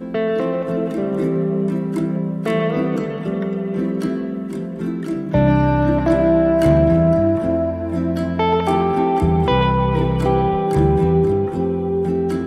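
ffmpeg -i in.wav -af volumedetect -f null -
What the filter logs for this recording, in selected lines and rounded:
mean_volume: -17.7 dB
max_volume: -5.7 dB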